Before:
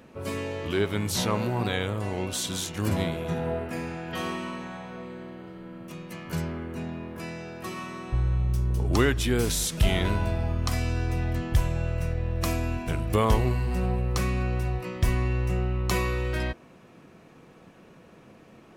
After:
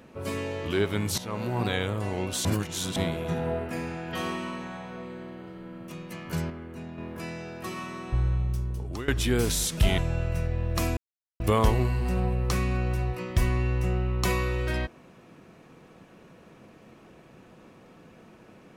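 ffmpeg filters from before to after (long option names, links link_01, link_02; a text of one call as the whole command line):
ffmpeg -i in.wav -filter_complex "[0:a]asplit=10[link_01][link_02][link_03][link_04][link_05][link_06][link_07][link_08][link_09][link_10];[link_01]atrim=end=1.18,asetpts=PTS-STARTPTS,afade=type=out:start_time=1.176:duration=0.004:curve=hsin:silence=0.149624[link_11];[link_02]atrim=start=1.18:end=2.452,asetpts=PTS-STARTPTS,afade=type=in:duration=0.42:silence=0.149624[link_12];[link_03]atrim=start=2.448:end=2.962,asetpts=PTS-STARTPTS,areverse[link_13];[link_04]atrim=start=2.958:end=6.502[link_14];[link_05]atrim=start=6.498:end=6.982,asetpts=PTS-STARTPTS,volume=-5.5dB[link_15];[link_06]atrim=start=6.978:end=9.08,asetpts=PTS-STARTPTS,afade=type=out:start_time=1.272:duration=0.83:silence=0.125893[link_16];[link_07]atrim=start=9.08:end=9.982,asetpts=PTS-STARTPTS,afade=type=in:duration=0.004:curve=hsin:silence=0.125893[link_17];[link_08]atrim=start=11.638:end=12.63,asetpts=PTS-STARTPTS,afade=type=out:start_time=0.988:duration=0.004:curve=hsin[link_18];[link_09]atrim=start=12.63:end=13.06,asetpts=PTS-STARTPTS,volume=0[link_19];[link_10]atrim=start=13.06,asetpts=PTS-STARTPTS,afade=type=in:duration=0.004:curve=hsin[link_20];[link_11][link_12]concat=n=2:v=0:a=1[link_21];[link_21][link_13]acrossfade=duration=0.004:curve1=hsin:curve2=hsin[link_22];[link_22][link_14]acrossfade=duration=0.004:curve1=hsin:curve2=hsin[link_23];[link_23][link_15]acrossfade=duration=0.004:curve1=hsin:curve2=hsin[link_24];[link_16][link_17]concat=n=2:v=0:a=1[link_25];[link_24][link_25]acrossfade=duration=0.004:curve1=hsin:curve2=hsin[link_26];[link_18][link_19][link_20]concat=n=3:v=0:a=1[link_27];[link_26][link_27]acrossfade=duration=0.004:curve1=hsin:curve2=hsin" out.wav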